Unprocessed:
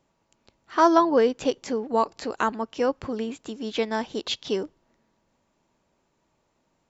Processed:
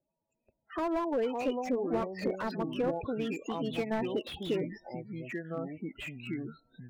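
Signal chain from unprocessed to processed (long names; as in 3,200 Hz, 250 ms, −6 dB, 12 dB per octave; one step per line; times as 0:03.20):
in parallel at −2 dB: brickwall limiter −15.5 dBFS, peak gain reduction 8.5 dB
on the sum: thirty-one-band graphic EQ 630 Hz +5 dB, 2,500 Hz +9 dB, 6,300 Hz +5 dB
speech leveller within 4 dB 2 s
0:02.59–0:03.86: tuned comb filter 160 Hz, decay 0.72 s, harmonics odd, mix 40%
downward compressor 2.5 to 1, threshold −27 dBFS, peak gain reduction 11 dB
spectral peaks only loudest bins 16
noise gate −59 dBFS, range −10 dB
delay with pitch and tempo change per echo 291 ms, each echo −5 semitones, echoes 2, each echo −6 dB
dynamic equaliser 3,100 Hz, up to +6 dB, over −46 dBFS, Q 0.99
slew-rate limiting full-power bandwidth 47 Hz
level −4.5 dB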